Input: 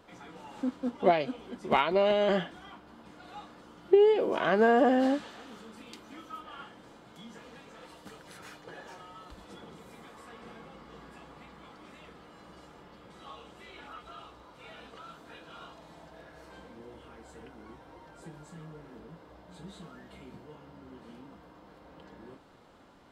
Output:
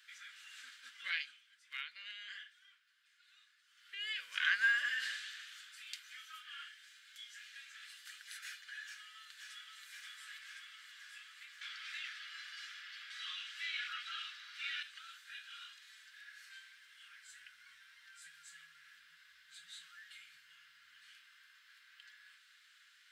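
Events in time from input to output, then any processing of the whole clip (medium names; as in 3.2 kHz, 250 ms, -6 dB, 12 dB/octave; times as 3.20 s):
0.99–4.09 s: dip -13.5 dB, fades 0.45 s
6.68–7.55 s: high-pass 1.3 kHz
8.86–9.85 s: echo throw 530 ms, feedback 75%, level -3 dB
11.61–14.83 s: high-order bell 2.5 kHz +8.5 dB 2.8 oct
17.29–21.10 s: tone controls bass +10 dB, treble 0 dB
whole clip: elliptic high-pass 1.6 kHz, stop band 50 dB; trim +4 dB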